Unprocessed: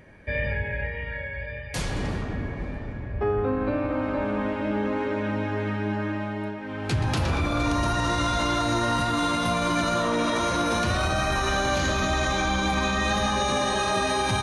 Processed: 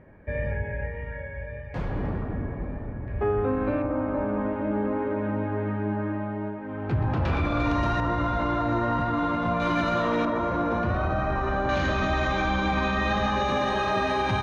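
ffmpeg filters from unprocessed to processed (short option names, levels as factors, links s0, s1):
-af "asetnsamples=n=441:p=0,asendcmd='3.08 lowpass f 2800;3.82 lowpass f 1300;7.25 lowpass f 2800;8 lowpass f 1500;9.6 lowpass f 2800;10.25 lowpass f 1300;11.69 lowpass f 2800',lowpass=1300"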